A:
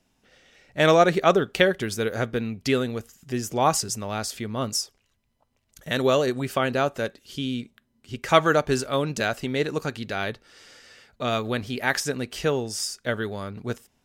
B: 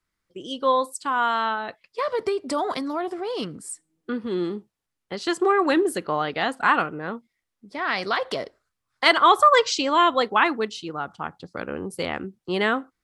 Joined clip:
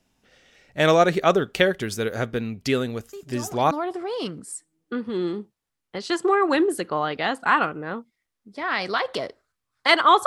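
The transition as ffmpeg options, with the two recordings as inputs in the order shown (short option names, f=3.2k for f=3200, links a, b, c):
-filter_complex "[1:a]asplit=2[a][b];[0:a]apad=whole_dur=10.26,atrim=end=10.26,atrim=end=3.712[c];[b]atrim=start=2.878:end=9.43[d];[a]atrim=start=2.3:end=2.88,asetpts=PTS-STARTPTS,volume=-13dB,afade=t=in:d=0.004:c=hsin,afade=t=out:st=0.576:d=0.004:c=hsin,adelay=138033S[e];[c][d]acrossfade=d=0.004:c1=hsin:c2=hsin[f];[f][e]amix=inputs=2:normalize=0"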